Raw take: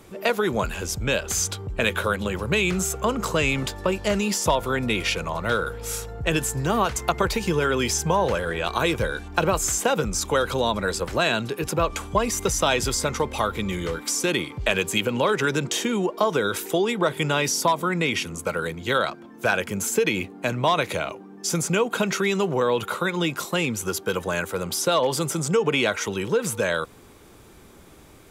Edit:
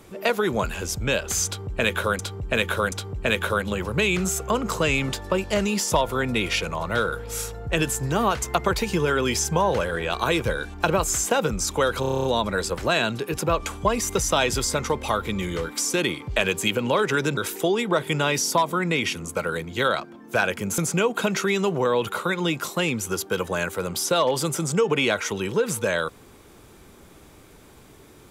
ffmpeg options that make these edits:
-filter_complex "[0:a]asplit=13[s0][s1][s2][s3][s4][s5][s6][s7][s8][s9][s10][s11][s12];[s0]atrim=end=2.192[s13];[s1]atrim=start=1.458:end=2.192[s14];[s2]atrim=start=1.458:end=10.572[s15];[s3]atrim=start=10.538:end=10.572[s16];[s4]atrim=start=10.538:end=10.572[s17];[s5]atrim=start=10.538:end=10.572[s18];[s6]atrim=start=10.538:end=10.572[s19];[s7]atrim=start=10.538:end=10.572[s20];[s8]atrim=start=10.538:end=10.572[s21];[s9]atrim=start=10.538:end=10.572[s22];[s10]atrim=start=10.538:end=15.672[s23];[s11]atrim=start=16.468:end=19.882[s24];[s12]atrim=start=21.538[s25];[s13][s14]acrossfade=d=0.004:c1=hsin:c2=hsin[s26];[s26][s15]acrossfade=d=0.004:c1=hsin:c2=hsin[s27];[s27][s16]acrossfade=d=0.004:c1=hsin:c2=hsin[s28];[s28][s17]acrossfade=d=0.004:c1=hsin:c2=hsin[s29];[s29][s18]acrossfade=d=0.004:c1=hsin:c2=hsin[s30];[s30][s19]acrossfade=d=0.004:c1=hsin:c2=hsin[s31];[s31][s20]acrossfade=d=0.004:c1=hsin:c2=hsin[s32];[s32][s21]acrossfade=d=0.004:c1=hsin:c2=hsin[s33];[s33][s22]acrossfade=d=0.004:c1=hsin:c2=hsin[s34];[s34][s23]acrossfade=d=0.004:c1=hsin:c2=hsin[s35];[s35][s24]acrossfade=d=0.004:c1=hsin:c2=hsin[s36];[s36][s25]acrossfade=d=0.004:c1=hsin:c2=hsin"

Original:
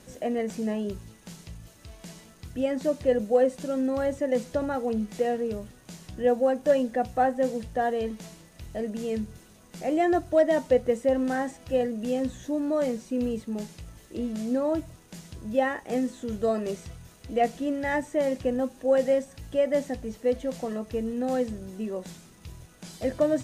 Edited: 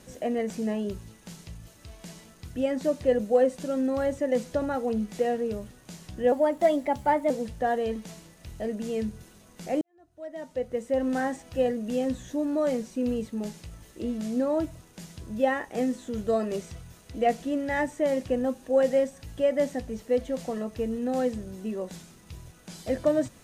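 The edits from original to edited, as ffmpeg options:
-filter_complex "[0:a]asplit=4[s0][s1][s2][s3];[s0]atrim=end=6.324[s4];[s1]atrim=start=6.32:end=7.45,asetpts=PTS-STARTPTS,asetrate=50715,aresample=44100,atrim=end_sample=43333,asetpts=PTS-STARTPTS[s5];[s2]atrim=start=7.446:end=9.96,asetpts=PTS-STARTPTS,afade=t=out:st=2.51:d=0.004:c=hsin[s6];[s3]atrim=start=9.96,asetpts=PTS-STARTPTS,afade=t=in:d=1.32:c=qua[s7];[s4][s5]acrossfade=d=0.004:c1=hsin:c2=hsin[s8];[s6][s7]concat=n=2:v=0:a=1[s9];[s8][s9]acrossfade=d=0.004:c1=hsin:c2=hsin"

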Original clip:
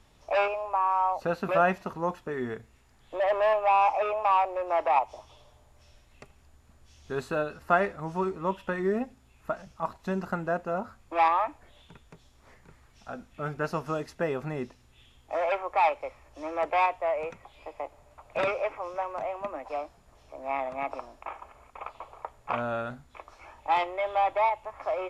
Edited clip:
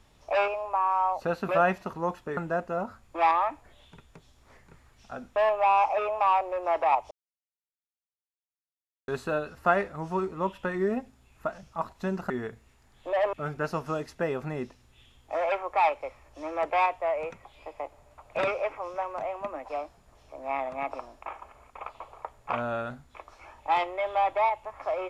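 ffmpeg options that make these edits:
-filter_complex "[0:a]asplit=7[s0][s1][s2][s3][s4][s5][s6];[s0]atrim=end=2.372[s7];[s1]atrim=start=10.338:end=13.332[s8];[s2]atrim=start=3.398:end=5.15,asetpts=PTS-STARTPTS,afade=t=out:st=1.748:d=0.004:c=hsin[s9];[s3]atrim=start=5.15:end=7.12,asetpts=PTS-STARTPTS,volume=0[s10];[s4]atrim=start=7.12:end=10.342,asetpts=PTS-STARTPTS,afade=t=in:d=0.004:c=hsin[s11];[s5]atrim=start=2.368:end=3.402[s12];[s6]atrim=start=13.328[s13];[s7][s8]acrossfade=d=0.004:c1=hsin:c2=hsin[s14];[s9][s10][s11]concat=n=3:v=0:a=1[s15];[s14][s15]acrossfade=d=0.004:c1=hsin:c2=hsin[s16];[s16][s12]acrossfade=d=0.004:c1=hsin:c2=hsin[s17];[s17][s13]acrossfade=d=0.004:c1=hsin:c2=hsin"

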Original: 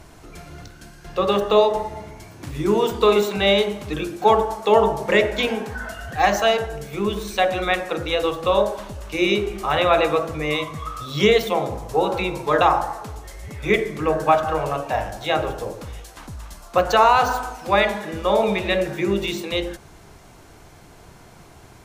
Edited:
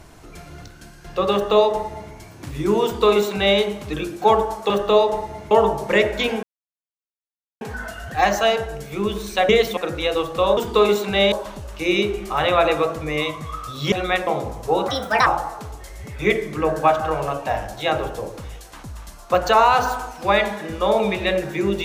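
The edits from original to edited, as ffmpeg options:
-filter_complex "[0:a]asplit=12[s0][s1][s2][s3][s4][s5][s6][s7][s8][s9][s10][s11];[s0]atrim=end=4.702[s12];[s1]atrim=start=1.318:end=2.132[s13];[s2]atrim=start=4.698:end=5.62,asetpts=PTS-STARTPTS,afade=t=out:st=0.918:d=0.004:c=hsin,apad=pad_dur=1.18[s14];[s3]atrim=start=5.62:end=7.502,asetpts=PTS-STARTPTS,afade=t=in:d=0.004:c=hsin[s15];[s4]atrim=start=11.248:end=11.532[s16];[s5]atrim=start=7.848:end=8.652[s17];[s6]atrim=start=2.838:end=3.592[s18];[s7]atrim=start=8.648:end=11.252[s19];[s8]atrim=start=7.498:end=7.852[s20];[s9]atrim=start=11.528:end=12.144[s21];[s10]atrim=start=12.14:end=12.7,asetpts=PTS-STARTPTS,asetrate=64386,aresample=44100,atrim=end_sample=16915,asetpts=PTS-STARTPTS[s22];[s11]atrim=start=12.696[s23];[s12][s13]acrossfade=d=0.004:c1=hsin:c2=hsin[s24];[s14][s15]concat=n=2:v=0:a=1[s25];[s24][s25]acrossfade=d=0.004:c1=hsin:c2=hsin[s26];[s26][s16]acrossfade=d=0.004:c1=hsin:c2=hsin[s27];[s27][s17]acrossfade=d=0.004:c1=hsin:c2=hsin[s28];[s28][s18]acrossfade=d=0.004:c1=hsin:c2=hsin[s29];[s29][s19]acrossfade=d=0.004:c1=hsin:c2=hsin[s30];[s30][s20]acrossfade=d=0.004:c1=hsin:c2=hsin[s31];[s31][s21]acrossfade=d=0.004:c1=hsin:c2=hsin[s32];[s32][s22]acrossfade=d=0.004:c1=hsin:c2=hsin[s33];[s33][s23]acrossfade=d=0.004:c1=hsin:c2=hsin"

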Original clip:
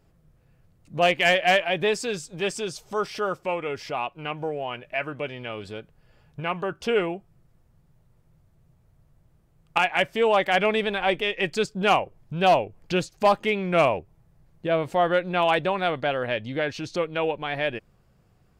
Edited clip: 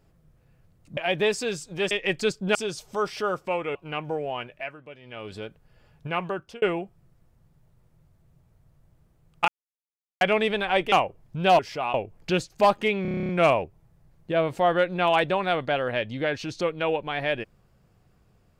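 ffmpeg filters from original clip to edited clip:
-filter_complex "[0:a]asplit=22[s0][s1][s2][s3][s4][s5][s6][s7][s8][s9][s10][s11][s12][s13][s14][s15][s16][s17][s18][s19][s20][s21];[s0]atrim=end=0.972[s22];[s1]atrim=start=1.588:end=2.532[s23];[s2]atrim=start=11.248:end=11.892[s24];[s3]atrim=start=2.528:end=3.732[s25];[s4]atrim=start=4.078:end=5.09,asetpts=PTS-STARTPTS,afade=t=out:st=0.662:d=0.35:silence=0.223872[s26];[s5]atrim=start=5.09:end=5.34,asetpts=PTS-STARTPTS,volume=0.224[s27];[s6]atrim=start=5.34:end=6.95,asetpts=PTS-STARTPTS,afade=t=in:d=0.35:silence=0.223872,afade=t=out:st=1.26:d=0.35[s28];[s7]atrim=start=6.95:end=9.81,asetpts=PTS-STARTPTS,afade=t=in:d=0.004:c=hsin,afade=t=out:st=2.856:d=0.004:c=hsin[s29];[s8]atrim=start=9.81:end=10.54,asetpts=PTS-STARTPTS,volume=0[s30];[s9]atrim=start=10.54:end=11.252,asetpts=PTS-STARTPTS,afade=t=in:d=0.004:c=hsin[s31];[s10]atrim=start=11.888:end=12.562[s32];[s11]atrim=start=3.728:end=4.082[s33];[s12]atrim=start=12.558:end=13.672[s34];[s13]atrim=start=13.638:end=13.672[s35];[s14]atrim=start=13.638:end=13.672[s36];[s15]atrim=start=13.638:end=13.672[s37];[s16]atrim=start=13.638:end=13.672[s38];[s17]atrim=start=13.638:end=13.672[s39];[s18]atrim=start=13.638:end=13.672[s40];[s19]atrim=start=13.638:end=13.672[s41];[s20]atrim=start=13.638:end=13.672[s42];[s21]atrim=start=13.638[s43];[s22][s23]acrossfade=d=0.004:c1=hsin:c2=hsin[s44];[s44][s24]acrossfade=d=0.004:c1=hsin:c2=hsin[s45];[s45][s25]acrossfade=d=0.004:c1=hsin:c2=hsin[s46];[s26][s27][s28][s29][s30][s31]concat=n=6:v=0:a=1[s47];[s46][s47]acrossfade=d=0.004:c1=hsin:c2=hsin[s48];[s48][s32]acrossfade=d=0.004:c1=hsin:c2=hsin[s49];[s49][s33]acrossfade=d=0.004:c1=hsin:c2=hsin[s50];[s50][s34]acrossfade=d=0.004:c1=hsin:c2=hsin[s51];[s51][s35]acrossfade=d=0.004:c1=hsin:c2=hsin[s52];[s52][s36]acrossfade=d=0.004:c1=hsin:c2=hsin[s53];[s53][s37]acrossfade=d=0.004:c1=hsin:c2=hsin[s54];[s54][s38]acrossfade=d=0.004:c1=hsin:c2=hsin[s55];[s55][s39]acrossfade=d=0.004:c1=hsin:c2=hsin[s56];[s56][s40]acrossfade=d=0.004:c1=hsin:c2=hsin[s57];[s57][s41]acrossfade=d=0.004:c1=hsin:c2=hsin[s58];[s58][s42]acrossfade=d=0.004:c1=hsin:c2=hsin[s59];[s59][s43]acrossfade=d=0.004:c1=hsin:c2=hsin"

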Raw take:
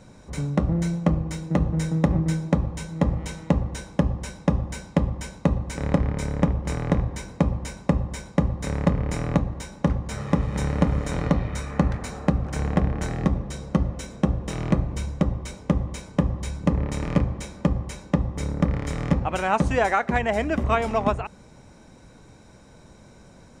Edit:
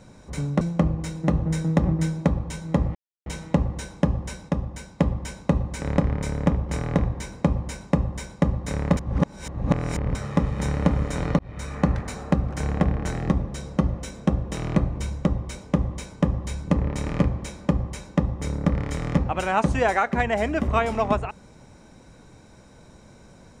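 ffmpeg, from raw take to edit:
-filter_complex "[0:a]asplit=8[s0][s1][s2][s3][s4][s5][s6][s7];[s0]atrim=end=0.612[s8];[s1]atrim=start=0.878:end=3.22,asetpts=PTS-STARTPTS,afade=t=out:st=2.338:d=0.004:c=hsin,apad=pad_dur=0.31[s9];[s2]atrim=start=3.22:end=4.452,asetpts=PTS-STARTPTS,afade=t=in:d=0.004:c=hsin[s10];[s3]atrim=start=4.448:end=4.952,asetpts=PTS-STARTPTS,volume=0.631[s11];[s4]atrim=start=4.948:end=8.932[s12];[s5]atrim=start=8.928:end=10.112,asetpts=PTS-STARTPTS,areverse[s13];[s6]atrim=start=10.108:end=11.35,asetpts=PTS-STARTPTS,afade=t=out:st=1.238:d=0.004:c=hsin[s14];[s7]atrim=start=11.35,asetpts=PTS-STARTPTS,afade=t=in:d=0.34[s15];[s9][s10]concat=n=2:v=0:a=1[s16];[s8][s16]acrossfade=d=0.004:c1=hsin:c2=hsin[s17];[s17][s11]acrossfade=d=0.004:c1=hsin:c2=hsin[s18];[s18][s12]acrossfade=d=0.004:c1=hsin:c2=hsin[s19];[s19][s13]acrossfade=d=0.004:c1=hsin:c2=hsin[s20];[s14][s15]concat=n=2:v=0:a=1[s21];[s20][s21]acrossfade=d=0.004:c1=hsin:c2=hsin"

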